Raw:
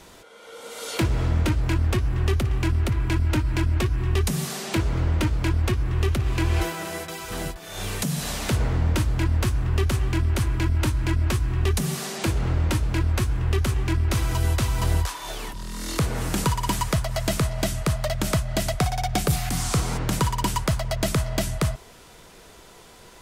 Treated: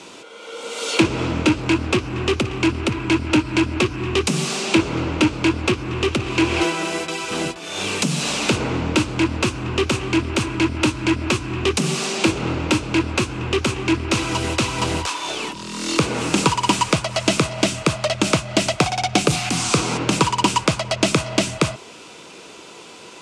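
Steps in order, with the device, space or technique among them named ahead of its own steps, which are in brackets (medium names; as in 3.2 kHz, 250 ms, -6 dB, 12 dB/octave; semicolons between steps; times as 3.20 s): full-range speaker at full volume (loudspeaker Doppler distortion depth 0.19 ms; cabinet simulation 200–8700 Hz, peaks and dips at 310 Hz +4 dB, 690 Hz -4 dB, 1.8 kHz -7 dB, 2.6 kHz +7 dB); trim +8.5 dB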